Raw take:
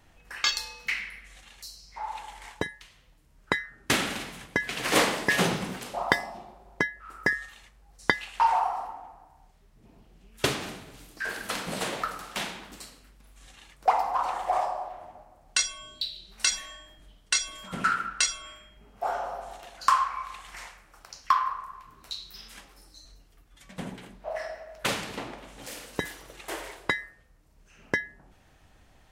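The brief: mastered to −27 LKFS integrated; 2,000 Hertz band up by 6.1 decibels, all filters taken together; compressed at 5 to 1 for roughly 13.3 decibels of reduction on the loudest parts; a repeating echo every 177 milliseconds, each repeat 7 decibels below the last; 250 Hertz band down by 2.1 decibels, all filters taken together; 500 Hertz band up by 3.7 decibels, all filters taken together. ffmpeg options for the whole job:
ffmpeg -i in.wav -af "equalizer=frequency=250:width_type=o:gain=-5,equalizer=frequency=500:width_type=o:gain=5.5,equalizer=frequency=2000:width_type=o:gain=7,acompressor=threshold=-29dB:ratio=5,aecho=1:1:177|354|531|708|885:0.447|0.201|0.0905|0.0407|0.0183,volume=7dB" out.wav

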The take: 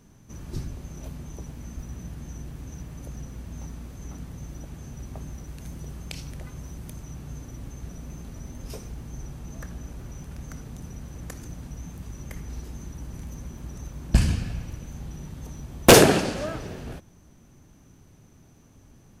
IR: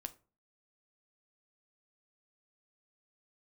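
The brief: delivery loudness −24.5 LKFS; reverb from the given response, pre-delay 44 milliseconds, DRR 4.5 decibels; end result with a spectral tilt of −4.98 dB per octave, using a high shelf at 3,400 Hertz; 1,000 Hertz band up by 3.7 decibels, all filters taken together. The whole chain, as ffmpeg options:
-filter_complex "[0:a]equalizer=frequency=1000:width_type=o:gain=5.5,highshelf=frequency=3400:gain=-6,asplit=2[link_01][link_02];[1:a]atrim=start_sample=2205,adelay=44[link_03];[link_02][link_03]afir=irnorm=-1:irlink=0,volume=-1dB[link_04];[link_01][link_04]amix=inputs=2:normalize=0,volume=-4.5dB"

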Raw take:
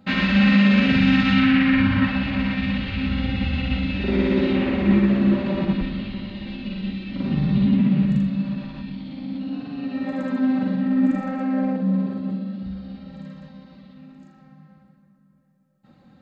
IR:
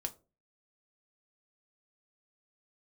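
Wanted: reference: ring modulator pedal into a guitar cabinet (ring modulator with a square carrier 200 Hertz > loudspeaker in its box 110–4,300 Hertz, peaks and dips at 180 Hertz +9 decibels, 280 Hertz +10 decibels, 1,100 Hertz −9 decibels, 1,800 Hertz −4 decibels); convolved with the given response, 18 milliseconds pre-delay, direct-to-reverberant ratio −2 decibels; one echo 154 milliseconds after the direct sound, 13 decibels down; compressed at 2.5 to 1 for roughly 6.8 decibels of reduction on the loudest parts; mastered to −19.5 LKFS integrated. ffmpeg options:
-filter_complex "[0:a]acompressor=threshold=-23dB:ratio=2.5,aecho=1:1:154:0.224,asplit=2[link_01][link_02];[1:a]atrim=start_sample=2205,adelay=18[link_03];[link_02][link_03]afir=irnorm=-1:irlink=0,volume=2.5dB[link_04];[link_01][link_04]amix=inputs=2:normalize=0,aeval=exprs='val(0)*sgn(sin(2*PI*200*n/s))':channel_layout=same,highpass=110,equalizer=frequency=180:width_type=q:width=4:gain=9,equalizer=frequency=280:width_type=q:width=4:gain=10,equalizer=frequency=1100:width_type=q:width=4:gain=-9,equalizer=frequency=1800:width_type=q:width=4:gain=-4,lowpass=frequency=4300:width=0.5412,lowpass=frequency=4300:width=1.3066,volume=3.5dB"

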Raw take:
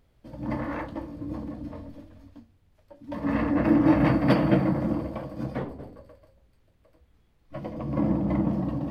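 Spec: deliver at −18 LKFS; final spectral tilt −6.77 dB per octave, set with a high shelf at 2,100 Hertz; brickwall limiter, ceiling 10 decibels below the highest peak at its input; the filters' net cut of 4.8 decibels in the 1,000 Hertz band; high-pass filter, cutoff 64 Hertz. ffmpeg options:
ffmpeg -i in.wav -af "highpass=64,equalizer=frequency=1000:width_type=o:gain=-7,highshelf=frequency=2100:gain=4,volume=11.5dB,alimiter=limit=-6.5dB:level=0:latency=1" out.wav

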